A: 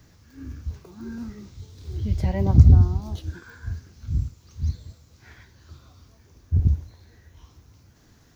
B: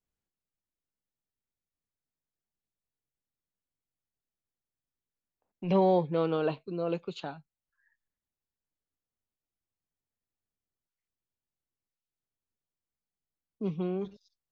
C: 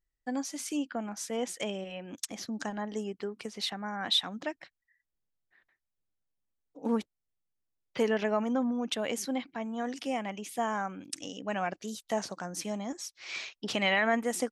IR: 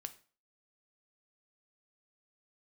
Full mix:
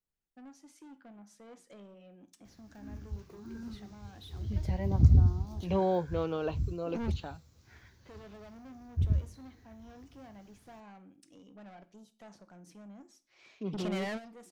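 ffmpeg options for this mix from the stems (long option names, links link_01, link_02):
-filter_complex "[0:a]adelay=2450,volume=-8.5dB[link_01];[1:a]volume=-4.5dB,asplit=2[link_02][link_03];[2:a]tiltshelf=frequency=1100:gain=6.5,asoftclip=type=tanh:threshold=-31dB,adelay=100,volume=-4.5dB,asplit=2[link_04][link_05];[link_05]volume=-9.5dB[link_06];[link_03]apad=whole_len=644498[link_07];[link_04][link_07]sidechaingate=range=-33dB:threshold=-51dB:ratio=16:detection=peak[link_08];[3:a]atrim=start_sample=2205[link_09];[link_06][link_09]afir=irnorm=-1:irlink=0[link_10];[link_01][link_02][link_08][link_10]amix=inputs=4:normalize=0"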